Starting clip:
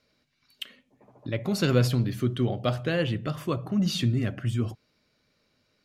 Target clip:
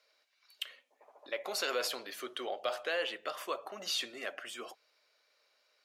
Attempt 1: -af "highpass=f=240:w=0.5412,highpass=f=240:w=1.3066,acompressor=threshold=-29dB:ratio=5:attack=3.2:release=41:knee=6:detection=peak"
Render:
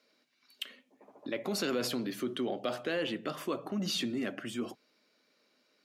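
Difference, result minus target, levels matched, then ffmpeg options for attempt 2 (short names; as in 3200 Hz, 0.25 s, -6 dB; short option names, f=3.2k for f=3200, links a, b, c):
250 Hz band +14.5 dB
-af "highpass=f=530:w=0.5412,highpass=f=530:w=1.3066,acompressor=threshold=-29dB:ratio=5:attack=3.2:release=41:knee=6:detection=peak"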